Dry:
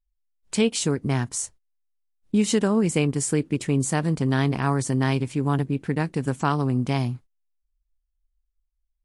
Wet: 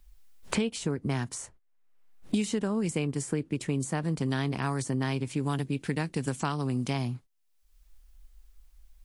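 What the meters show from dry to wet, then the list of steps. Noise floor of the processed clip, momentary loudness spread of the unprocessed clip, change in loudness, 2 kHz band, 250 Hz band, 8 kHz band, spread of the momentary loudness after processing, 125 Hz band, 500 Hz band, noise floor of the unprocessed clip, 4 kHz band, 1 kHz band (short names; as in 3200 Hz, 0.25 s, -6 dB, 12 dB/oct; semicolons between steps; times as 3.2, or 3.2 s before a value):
-66 dBFS, 5 LU, -7.0 dB, -5.5 dB, -6.5 dB, -9.0 dB, 4 LU, -7.0 dB, -7.5 dB, -77 dBFS, -6.0 dB, -7.0 dB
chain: three-band squash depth 100%; gain -7.5 dB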